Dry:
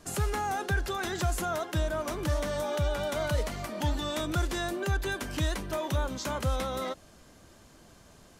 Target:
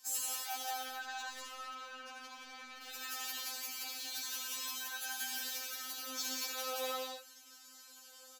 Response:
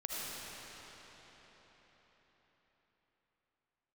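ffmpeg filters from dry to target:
-filter_complex "[0:a]acontrast=52,volume=27dB,asoftclip=hard,volume=-27dB,highpass=170,aderivative,bandreject=f=2k:w=7.6,asplit=2[a][b];[b]adelay=1399,volume=-24dB,highshelf=f=4k:g=-31.5[c];[a][c]amix=inputs=2:normalize=0,asettb=1/sr,asplit=3[d][e][f];[d]atrim=end=0.724[g];[e]atrim=start=0.72:end=2.82,asetpts=PTS-STARTPTS,afade=t=in:d=0.004:c=qsin,afade=t=out:st=2.096:d=0.004:c=qsin,adynamicsmooth=sensitivity=6:basefreq=1.8k[h];[f]atrim=start=2.816[i];[g][h]acrossfade=d=0.004:c1=hsin:c2=qsin[j];[j][i]acrossfade=d=0.004:c1=qsin:c2=hsin,equalizer=f=9.1k:w=4.5:g=-14.5[k];[1:a]atrim=start_sample=2205,afade=t=out:st=0.34:d=0.01,atrim=end_sample=15435,asetrate=43659,aresample=44100[l];[k][l]afir=irnorm=-1:irlink=0,afftfilt=real='re*3.46*eq(mod(b,12),0)':imag='im*3.46*eq(mod(b,12),0)':win_size=2048:overlap=0.75,volume=4.5dB"

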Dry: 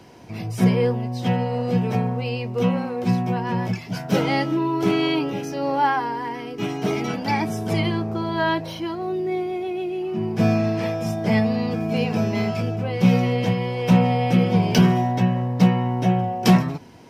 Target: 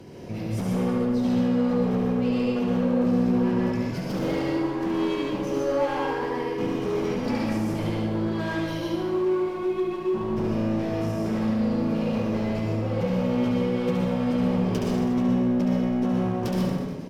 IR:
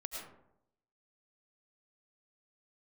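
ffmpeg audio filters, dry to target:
-filter_complex "[0:a]lowshelf=f=610:t=q:w=1.5:g=7,bandreject=f=60:t=h:w=6,bandreject=f=120:t=h:w=6,bandreject=f=180:t=h:w=6,bandreject=f=240:t=h:w=6,bandreject=f=300:t=h:w=6,bandreject=f=360:t=h:w=6,bandreject=f=420:t=h:w=6,bandreject=f=480:t=h:w=6,acompressor=threshold=-24dB:ratio=2.5,asoftclip=type=hard:threshold=-23.5dB,aecho=1:1:70|147|231.7|324.9|427.4:0.631|0.398|0.251|0.158|0.1[a];[1:a]atrim=start_sample=2205,atrim=end_sample=6615,asetrate=37926,aresample=44100[b];[a][b]afir=irnorm=-1:irlink=0"

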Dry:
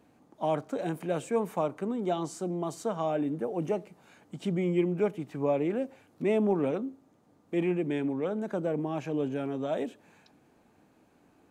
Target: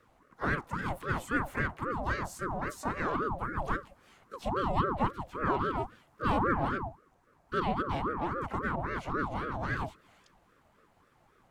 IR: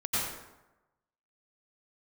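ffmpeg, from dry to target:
-filter_complex "[0:a]afreqshift=120,asplit=2[a][b];[b]asetrate=66075,aresample=44100,atempo=0.66742,volume=-8dB[c];[a][c]amix=inputs=2:normalize=0,aeval=exprs='val(0)*sin(2*PI*570*n/s+570*0.55/3.7*sin(2*PI*3.7*n/s))':c=same"

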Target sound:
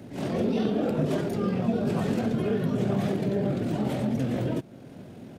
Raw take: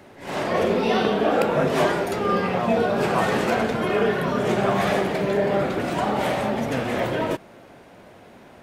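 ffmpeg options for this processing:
-af "equalizer=f=125:t=o:w=1:g=10,equalizer=f=250:t=o:w=1:g=7,equalizer=f=1k:t=o:w=1:g=-7,equalizer=f=2k:t=o:w=1:g=-5,atempo=1.6,acompressor=threshold=-37dB:ratio=1.5"

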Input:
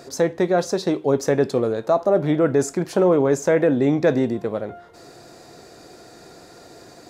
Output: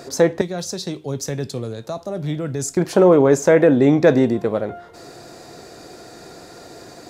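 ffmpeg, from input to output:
-filter_complex "[0:a]asettb=1/sr,asplit=3[a][b][c];[a]atrim=end=0.414[d];[b]atrim=start=0.41:end=2.77,asetpts=PTS-STARTPTS,afade=t=in:d=0.004:c=qsin,afade=t=out:st=2.356:d=0.004:c=qsin,acrossover=split=160|3000[e][f][g];[f]acompressor=threshold=-59dB:ratio=1.5[h];[e][h][g]amix=inputs=3:normalize=0[i];[c]atrim=start=2.766[j];[d][i]acrossfade=d=0.004:c1=hsin:c2=qsin[k];[k][j]acrossfade=d=0.004:c1=qsin:c2=hsin,volume=4.5dB"

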